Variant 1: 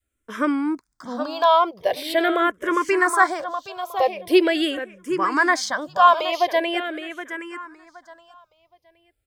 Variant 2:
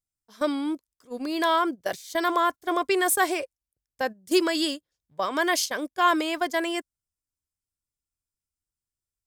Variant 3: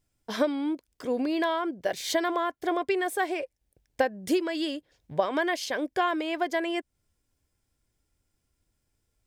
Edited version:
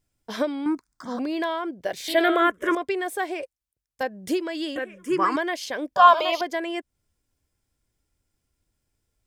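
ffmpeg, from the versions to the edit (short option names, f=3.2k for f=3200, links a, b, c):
-filter_complex "[0:a]asplit=4[a][b][c][d];[2:a]asplit=6[e][f][g][h][i][j];[e]atrim=end=0.662[k];[a]atrim=start=0.658:end=1.192[l];[f]atrim=start=1.188:end=2.082[m];[b]atrim=start=2.078:end=2.752[n];[g]atrim=start=2.748:end=3.432[o];[1:a]atrim=start=3.428:end=4.032[p];[h]atrim=start=4.028:end=4.762[q];[c]atrim=start=4.758:end=5.362[r];[i]atrim=start=5.358:end=5.962[s];[d]atrim=start=5.958:end=6.412[t];[j]atrim=start=6.408[u];[k][l]acrossfade=d=0.004:c1=hsin:c2=hsin[v];[v][m]acrossfade=d=0.004:c1=hsin:c2=hsin[w];[w][n]acrossfade=d=0.004:c1=hsin:c2=hsin[x];[x][o]acrossfade=d=0.004:c1=hsin:c2=hsin[y];[y][p]acrossfade=d=0.004:c1=hsin:c2=hsin[z];[z][q]acrossfade=d=0.004:c1=hsin:c2=hsin[aa];[aa][r]acrossfade=d=0.004:c1=hsin:c2=hsin[ab];[ab][s]acrossfade=d=0.004:c1=hsin:c2=hsin[ac];[ac][t]acrossfade=d=0.004:c1=hsin:c2=hsin[ad];[ad][u]acrossfade=d=0.004:c1=hsin:c2=hsin"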